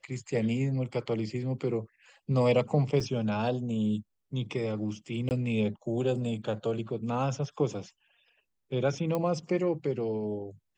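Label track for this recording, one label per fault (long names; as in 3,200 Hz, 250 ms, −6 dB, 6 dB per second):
3.000000	3.000000	drop-out 4.5 ms
5.290000	5.310000	drop-out 19 ms
9.150000	9.150000	click −18 dBFS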